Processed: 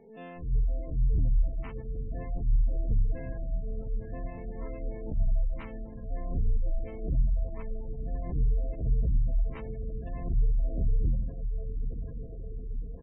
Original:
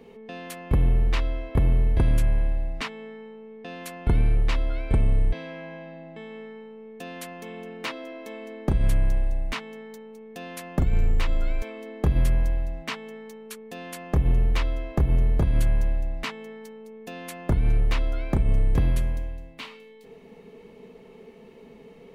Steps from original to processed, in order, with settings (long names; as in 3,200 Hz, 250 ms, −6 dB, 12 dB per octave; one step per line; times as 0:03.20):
spectrum smeared in time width 107 ms
tempo change 1.7×
high-shelf EQ 2,800 Hz −11 dB
on a send: feedback delay with all-pass diffusion 952 ms, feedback 64%, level −8.5 dB
on the sum: gate on every frequency bin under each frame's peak −25 dB strong
level that may rise only so fast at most 120 dB per second
level −3.5 dB